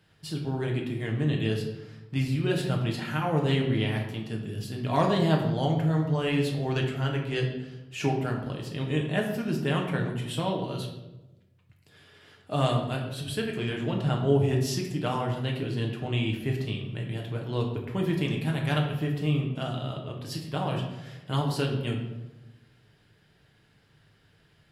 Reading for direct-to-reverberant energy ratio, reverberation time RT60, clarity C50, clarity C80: 0.0 dB, 1.0 s, 5.5 dB, 8.0 dB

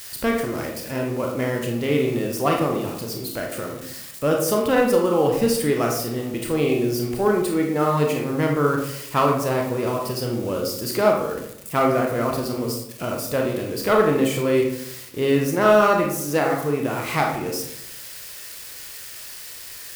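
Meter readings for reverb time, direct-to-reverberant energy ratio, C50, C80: 0.75 s, 0.0 dB, 4.0 dB, 8.0 dB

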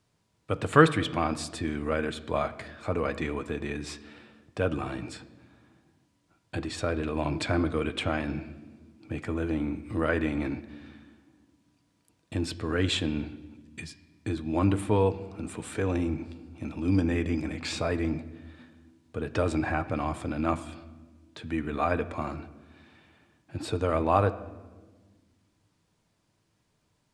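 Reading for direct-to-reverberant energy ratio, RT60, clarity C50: 9.5 dB, 1.4 s, 15.5 dB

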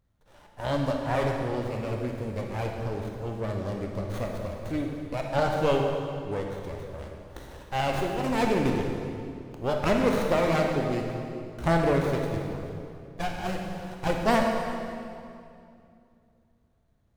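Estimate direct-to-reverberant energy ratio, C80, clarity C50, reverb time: 1.0 dB, 3.5 dB, 2.0 dB, 2.6 s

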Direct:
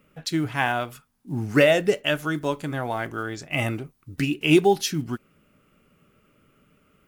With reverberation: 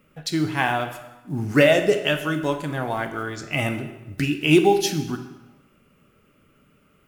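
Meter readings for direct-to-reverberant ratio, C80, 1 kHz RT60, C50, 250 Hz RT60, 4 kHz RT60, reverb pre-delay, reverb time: 7.0 dB, 12.0 dB, 1.1 s, 9.5 dB, 1.1 s, 0.90 s, 15 ms, 1.1 s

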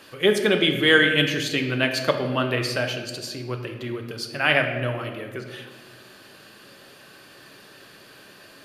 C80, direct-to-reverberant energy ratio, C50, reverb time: 8.5 dB, 4.0 dB, 7.0 dB, 1.4 s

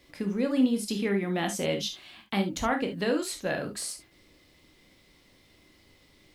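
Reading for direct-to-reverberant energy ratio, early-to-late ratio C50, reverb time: 4.0 dB, 10.5 dB, not exponential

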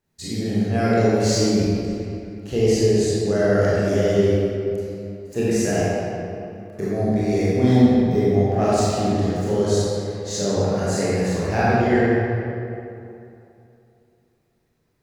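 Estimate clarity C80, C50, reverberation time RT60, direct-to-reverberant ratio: -3.5 dB, -5.5 dB, 2.7 s, -10.0 dB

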